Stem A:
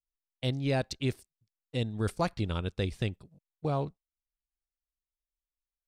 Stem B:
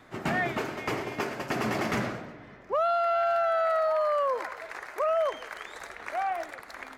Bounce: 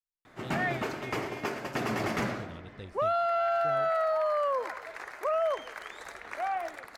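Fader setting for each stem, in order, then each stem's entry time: -14.0, -2.0 dB; 0.00, 0.25 s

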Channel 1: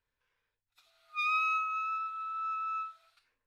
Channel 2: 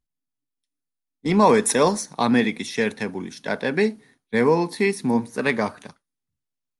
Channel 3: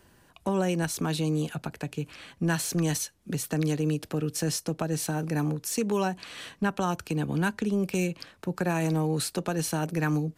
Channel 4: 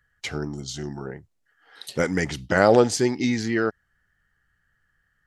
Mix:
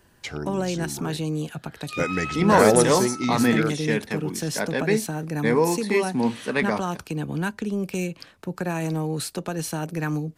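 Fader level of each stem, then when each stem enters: -2.5, -2.0, 0.0, -2.5 dB; 0.75, 1.10, 0.00, 0.00 s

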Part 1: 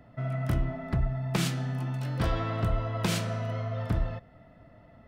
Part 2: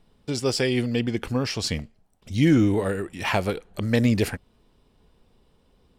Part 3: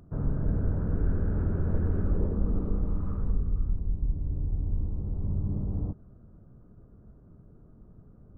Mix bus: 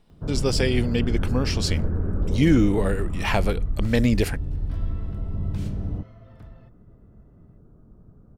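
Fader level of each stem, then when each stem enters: -17.5, 0.0, +2.0 dB; 2.50, 0.00, 0.10 s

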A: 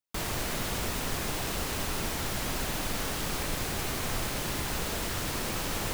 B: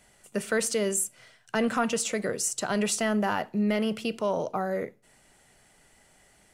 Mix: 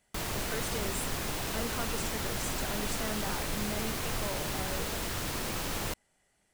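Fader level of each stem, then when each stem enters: -2.0, -12.5 dB; 0.00, 0.00 s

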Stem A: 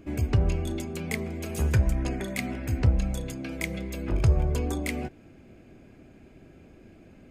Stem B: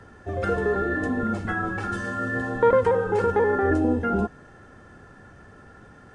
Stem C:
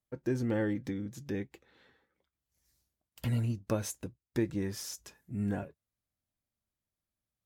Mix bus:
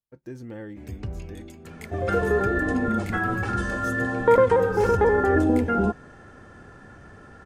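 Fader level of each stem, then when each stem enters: -10.5, +1.5, -7.0 dB; 0.70, 1.65, 0.00 s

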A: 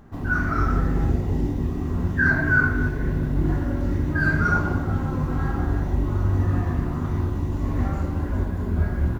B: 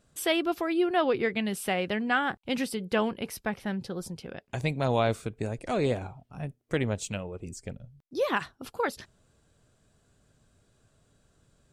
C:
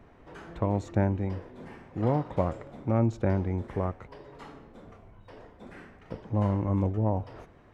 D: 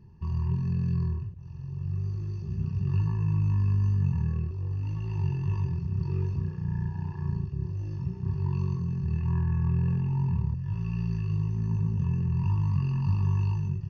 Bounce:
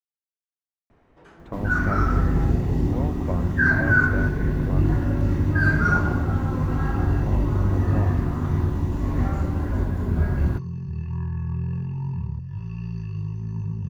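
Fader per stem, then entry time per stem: +0.5 dB, off, -4.5 dB, -1.5 dB; 1.40 s, off, 0.90 s, 1.85 s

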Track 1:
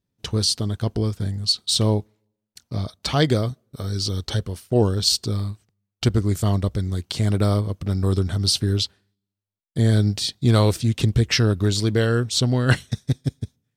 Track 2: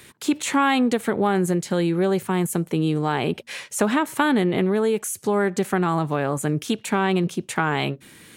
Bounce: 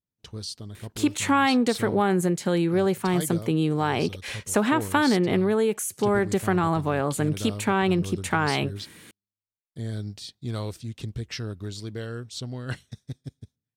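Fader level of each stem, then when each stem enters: -14.5, -1.5 dB; 0.00, 0.75 s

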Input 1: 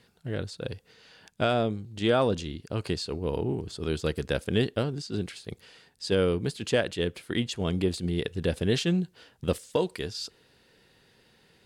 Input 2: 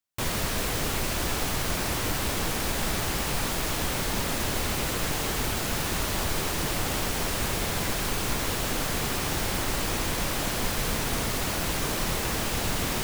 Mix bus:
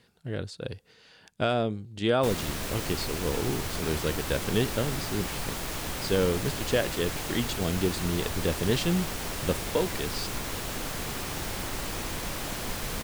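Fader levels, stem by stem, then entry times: -1.0, -5.5 dB; 0.00, 2.05 s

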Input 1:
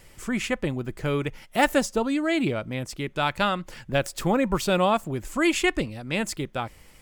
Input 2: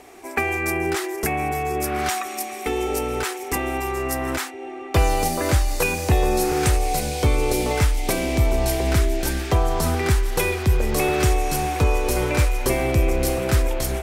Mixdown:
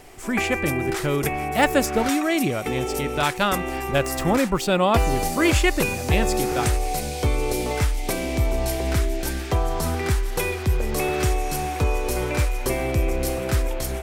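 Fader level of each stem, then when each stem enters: +2.0, -3.0 dB; 0.00, 0.00 s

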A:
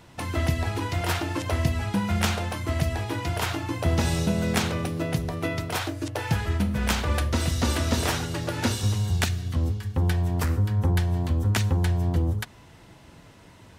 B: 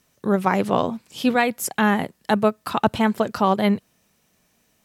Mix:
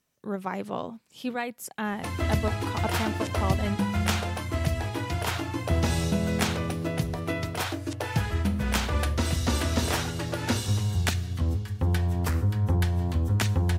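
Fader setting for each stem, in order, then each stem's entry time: -1.5, -12.0 dB; 1.85, 0.00 s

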